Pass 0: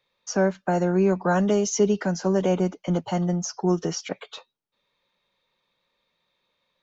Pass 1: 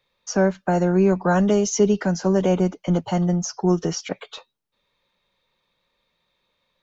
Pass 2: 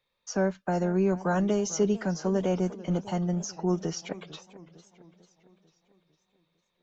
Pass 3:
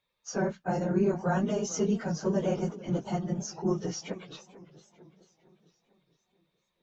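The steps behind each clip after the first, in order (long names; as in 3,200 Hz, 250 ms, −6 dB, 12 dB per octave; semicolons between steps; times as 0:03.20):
low-shelf EQ 91 Hz +9 dB; level +2 dB
feedback echo with a swinging delay time 449 ms, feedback 52%, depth 170 cents, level −18 dB; level −7.5 dB
random phases in long frames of 50 ms; level −2 dB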